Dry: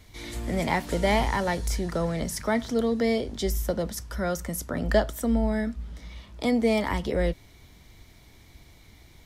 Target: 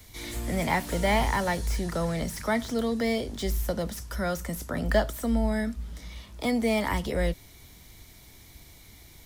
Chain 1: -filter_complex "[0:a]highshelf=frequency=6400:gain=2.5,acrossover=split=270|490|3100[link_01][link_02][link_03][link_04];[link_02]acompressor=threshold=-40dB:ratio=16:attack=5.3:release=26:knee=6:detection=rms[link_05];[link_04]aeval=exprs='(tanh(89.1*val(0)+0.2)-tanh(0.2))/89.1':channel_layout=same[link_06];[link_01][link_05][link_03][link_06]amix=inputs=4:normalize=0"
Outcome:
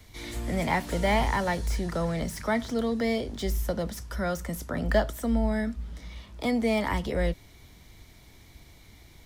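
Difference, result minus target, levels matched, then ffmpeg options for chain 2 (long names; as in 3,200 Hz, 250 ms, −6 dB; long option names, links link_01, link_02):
8,000 Hz band −3.0 dB
-filter_complex "[0:a]highshelf=frequency=6400:gain=13.5,acrossover=split=270|490|3100[link_01][link_02][link_03][link_04];[link_02]acompressor=threshold=-40dB:ratio=16:attack=5.3:release=26:knee=6:detection=rms[link_05];[link_04]aeval=exprs='(tanh(89.1*val(0)+0.2)-tanh(0.2))/89.1':channel_layout=same[link_06];[link_01][link_05][link_03][link_06]amix=inputs=4:normalize=0"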